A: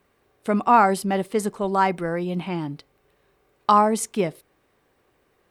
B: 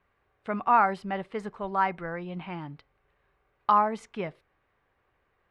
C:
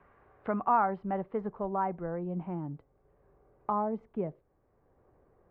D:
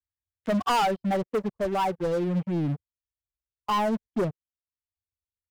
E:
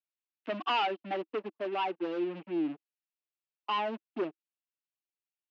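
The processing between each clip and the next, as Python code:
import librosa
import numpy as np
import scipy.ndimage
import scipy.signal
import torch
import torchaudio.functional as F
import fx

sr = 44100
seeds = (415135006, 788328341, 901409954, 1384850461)

y1 = scipy.signal.sosfilt(scipy.signal.butter(2, 2000.0, 'lowpass', fs=sr, output='sos'), x)
y1 = fx.peak_eq(y1, sr, hz=300.0, db=-12.5, octaves=2.7)
y2 = fx.filter_sweep_lowpass(y1, sr, from_hz=1400.0, to_hz=570.0, start_s=0.13, end_s=2.52, q=0.77)
y2 = fx.band_squash(y2, sr, depth_pct=40)
y3 = fx.bin_expand(y2, sr, power=2.0)
y3 = fx.leveller(y3, sr, passes=5)
y3 = F.gain(torch.from_numpy(y3), -3.0).numpy()
y4 = fx.cabinet(y3, sr, low_hz=280.0, low_slope=24, high_hz=4100.0, hz=(320.0, 510.0, 2700.0), db=(9, -7, 9))
y4 = F.gain(torch.from_numpy(y4), -6.0).numpy()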